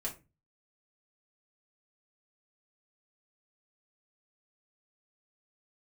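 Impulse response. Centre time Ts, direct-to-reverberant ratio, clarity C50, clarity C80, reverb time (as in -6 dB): 14 ms, -4.0 dB, 13.0 dB, 20.0 dB, not exponential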